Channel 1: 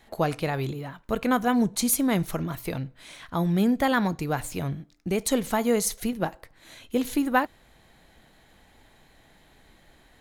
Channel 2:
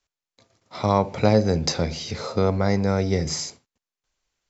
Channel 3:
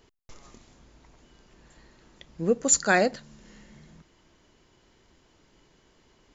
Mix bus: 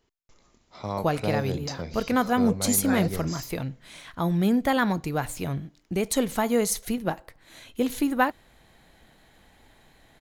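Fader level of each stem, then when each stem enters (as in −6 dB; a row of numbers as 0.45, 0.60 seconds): 0.0, −11.0, −11.0 decibels; 0.85, 0.00, 0.00 seconds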